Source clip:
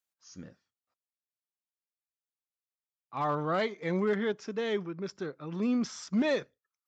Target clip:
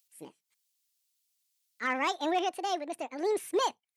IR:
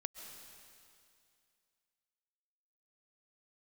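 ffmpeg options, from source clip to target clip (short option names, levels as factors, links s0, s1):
-filter_complex "[0:a]acrossover=split=1700[s0][s1];[s1]acompressor=mode=upward:threshold=0.00158:ratio=2.5[s2];[s0][s2]amix=inputs=2:normalize=0,asetrate=76440,aresample=44100"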